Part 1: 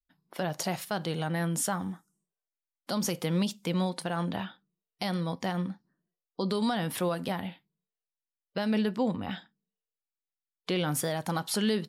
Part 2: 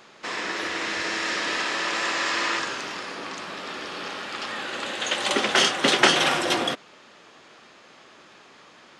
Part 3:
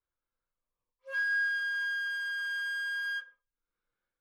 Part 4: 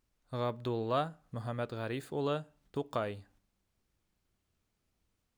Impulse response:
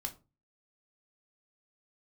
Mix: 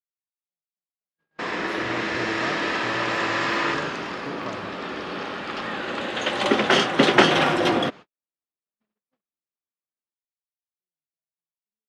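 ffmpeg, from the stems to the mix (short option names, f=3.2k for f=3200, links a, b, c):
-filter_complex "[0:a]highpass=f=99:w=0.5412,highpass=f=99:w=1.3066,adelay=100,volume=-19.5dB[a];[1:a]lowshelf=f=360:g=7,adelay=1150,volume=2.5dB[b];[2:a]volume=-15dB[c];[3:a]adelay=1500,volume=-1.5dB[d];[a][b][c][d]amix=inputs=4:normalize=0,agate=range=-59dB:threshold=-37dB:ratio=16:detection=peak,equalizer=f=9.1k:w=0.5:g=-13"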